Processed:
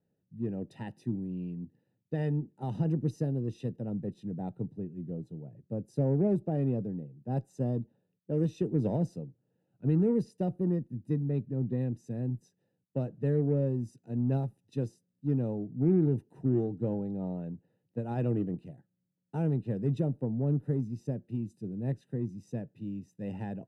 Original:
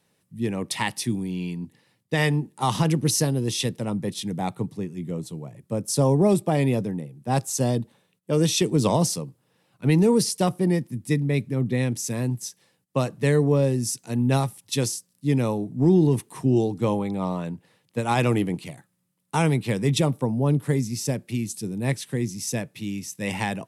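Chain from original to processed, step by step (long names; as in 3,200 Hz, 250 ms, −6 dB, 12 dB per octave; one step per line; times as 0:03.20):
moving average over 40 samples
harmonic generator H 8 −39 dB, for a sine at −11 dBFS
level −6.5 dB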